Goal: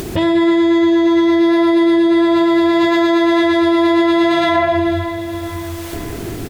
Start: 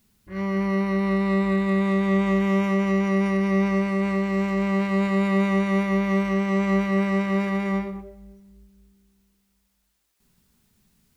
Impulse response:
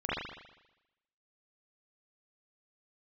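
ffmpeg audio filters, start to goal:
-filter_complex "[0:a]highshelf=f=3k:g=-10.5,asetrate=75852,aresample=44100,acompressor=mode=upward:threshold=-30dB:ratio=2.5,aecho=1:1:502|1004|1506|2008:0.1|0.055|0.0303|0.0166,asplit=2[a][b];[1:a]atrim=start_sample=2205,asetrate=29547,aresample=44100,highshelf=f=5.3k:g=11.5[c];[b][c]afir=irnorm=-1:irlink=0,volume=-12.5dB[d];[a][d]amix=inputs=2:normalize=0,alimiter=level_in=24dB:limit=-1dB:release=50:level=0:latency=1,volume=-6dB"

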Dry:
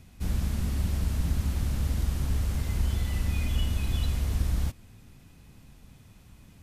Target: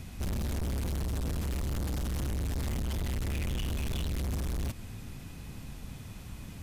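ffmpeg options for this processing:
-af "acompressor=threshold=-27dB:ratio=6,asoftclip=type=hard:threshold=-39.5dB,volume=9dB"

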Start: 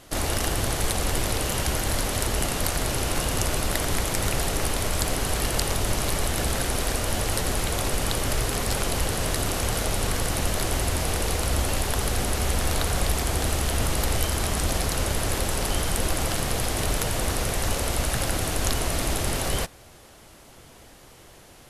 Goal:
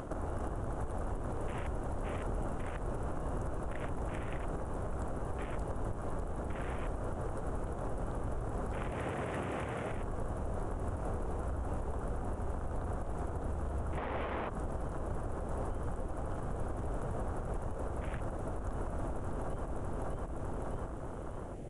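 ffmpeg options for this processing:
-filter_complex "[0:a]equalizer=f=4.5k:t=o:w=1:g=-15,aecho=1:1:603|1206|1809|2412:0.501|0.17|0.0579|0.0197,aresample=22050,aresample=44100,asplit=3[a][b][c];[a]afade=t=out:st=13.97:d=0.02[d];[b]equalizer=f=250:t=o:w=1:g=7,equalizer=f=500:t=o:w=1:g=8,equalizer=f=1k:t=o:w=1:g=11,equalizer=f=2k:t=o:w=1:g=6,equalizer=f=4k:t=o:w=1:g=11,equalizer=f=8k:t=o:w=1:g=-8,afade=t=in:st=13.97:d=0.02,afade=t=out:st=14.48:d=0.02[e];[c]afade=t=in:st=14.48:d=0.02[f];[d][e][f]amix=inputs=3:normalize=0,acompressor=mode=upward:threshold=-44dB:ratio=2.5,asettb=1/sr,asplit=3[g][h][i];[g]atrim=end=8.924[j];[h]atrim=start=8.92:end=9.91,asetpts=PTS-STARTPTS,afade=t=in:d=0.004:c=qsin,afade=t=out:st=0.986:d=0.004:c=qsin,highpass=100[k];[i]atrim=start=9.906[l];[j][k]acrossfade=d=0.004:c1=hsin:c2=qsin[m];[m][l]acrossfade=d=0.004:c1=qsin:c2=hsin,acompressor=threshold=-39dB:ratio=5,afwtdn=0.00447,alimiter=level_in=10dB:limit=-24dB:level=0:latency=1:release=185,volume=-10dB,volume=6.5dB"

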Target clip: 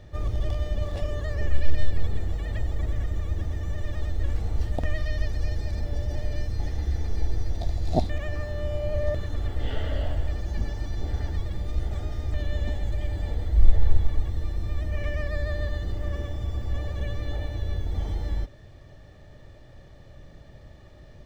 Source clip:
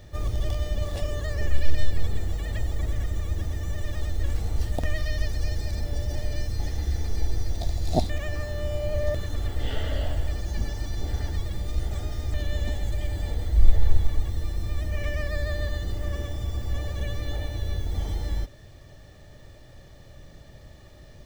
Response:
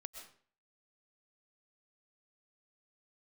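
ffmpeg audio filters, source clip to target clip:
-af "lowpass=f=2.7k:p=1"

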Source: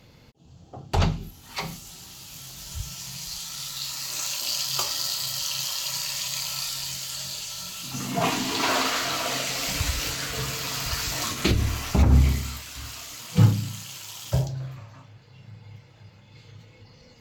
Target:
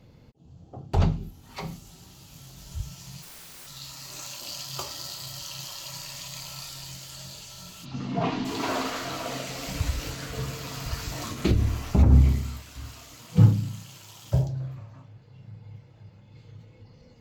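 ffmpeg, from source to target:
-filter_complex "[0:a]tiltshelf=f=940:g=5.5,asplit=3[a][b][c];[a]afade=t=out:st=3.21:d=0.02[d];[b]aeval=exprs='(mod(59.6*val(0)+1,2)-1)/59.6':c=same,afade=t=in:st=3.21:d=0.02,afade=t=out:st=3.66:d=0.02[e];[c]afade=t=in:st=3.66:d=0.02[f];[d][e][f]amix=inputs=3:normalize=0,asplit=3[g][h][i];[g]afade=t=out:st=7.84:d=0.02[j];[h]lowpass=f=4.9k:w=0.5412,lowpass=f=4.9k:w=1.3066,afade=t=in:st=7.84:d=0.02,afade=t=out:st=8.44:d=0.02[k];[i]afade=t=in:st=8.44:d=0.02[l];[j][k][l]amix=inputs=3:normalize=0,volume=-4.5dB"

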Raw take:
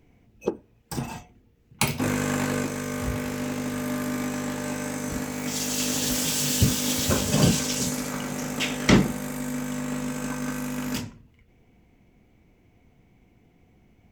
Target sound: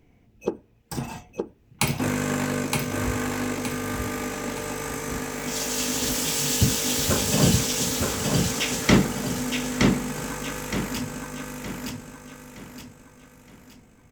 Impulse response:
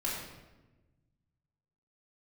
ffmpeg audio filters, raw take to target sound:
-af "aecho=1:1:918|1836|2754|3672|4590:0.708|0.276|0.108|0.042|0.0164"

